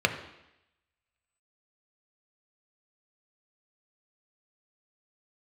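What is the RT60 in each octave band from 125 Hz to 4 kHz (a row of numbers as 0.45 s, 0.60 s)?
0.75 s, 0.85 s, 0.85 s, 0.85 s, 0.95 s, 0.90 s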